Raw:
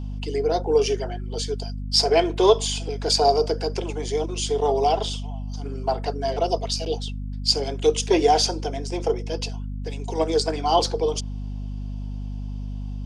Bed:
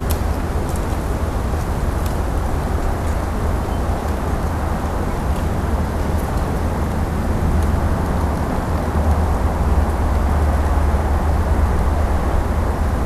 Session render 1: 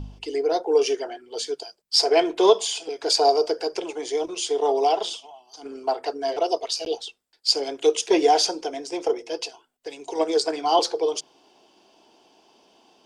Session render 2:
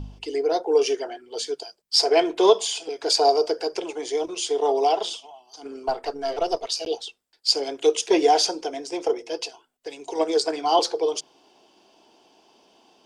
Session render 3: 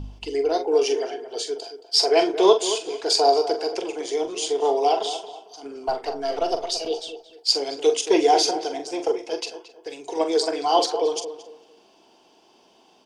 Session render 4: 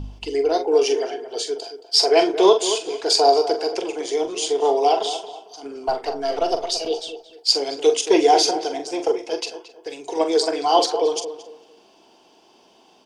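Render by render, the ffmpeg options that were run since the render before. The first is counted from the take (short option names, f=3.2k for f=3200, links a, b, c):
-af "bandreject=f=50:t=h:w=4,bandreject=f=100:t=h:w=4,bandreject=f=150:t=h:w=4,bandreject=f=200:t=h:w=4,bandreject=f=250:t=h:w=4"
-filter_complex "[0:a]asettb=1/sr,asplit=3[a][b][c];[a]atrim=end=5.884[d];[b]atrim=start=5.88:end=6.67,asetpts=PTS-STARTPTS,afade=t=in:d=0.004:c=qsin,afade=t=out:st=0.786:d=0.004:c=qsin,aeval=exprs='if(lt(val(0),0),0.708*val(0),val(0))':c=same[e];[c]atrim=start=6.666[f];[d][e]acrossfade=d=0.004:c1=hsin:c2=qsin[g];[g][f]acrossfade=d=0.004:c1=qsin:c2=hsin"
-filter_complex "[0:a]asplit=2[a][b];[b]adelay=43,volume=-9dB[c];[a][c]amix=inputs=2:normalize=0,asplit=2[d][e];[e]adelay=224,lowpass=f=2.2k:p=1,volume=-11.5dB,asplit=2[f][g];[g]adelay=224,lowpass=f=2.2k:p=1,volume=0.3,asplit=2[h][i];[i]adelay=224,lowpass=f=2.2k:p=1,volume=0.3[j];[d][f][h][j]amix=inputs=4:normalize=0"
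-af "volume=2.5dB,alimiter=limit=-3dB:level=0:latency=1"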